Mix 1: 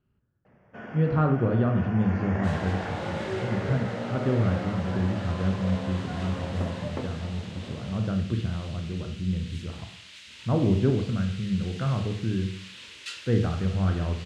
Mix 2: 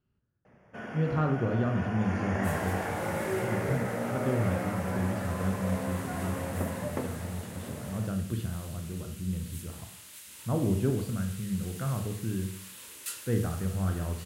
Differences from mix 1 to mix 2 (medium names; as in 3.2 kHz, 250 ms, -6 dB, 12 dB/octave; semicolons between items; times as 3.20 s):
speech -5.0 dB; second sound: remove frequency weighting D; master: remove distance through air 140 m